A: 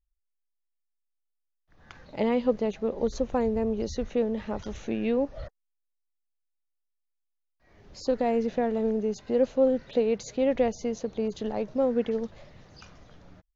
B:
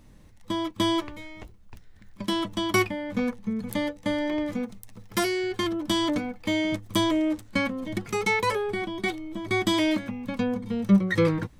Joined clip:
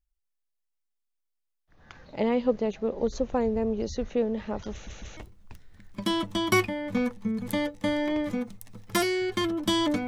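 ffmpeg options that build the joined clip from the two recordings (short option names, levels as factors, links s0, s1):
-filter_complex "[0:a]apad=whole_dur=10.07,atrim=end=10.07,asplit=3[s0][s1][s2];[s0]atrim=end=4.872[s3];[s1]atrim=start=4.718:end=4.872[s4];[s2]atrim=start=4.718:end=4.872[s5];[1:a]atrim=start=1.388:end=6.29[s6];[s3][s4]acrossfade=d=0.004:c1=hsin:c2=hsin[s7];[s7][s5]acrossfade=d=0.004:c1=hsin:c2=hsin[s8];[s8][s6]acrossfade=d=0.004:c1=hsin:c2=hsin"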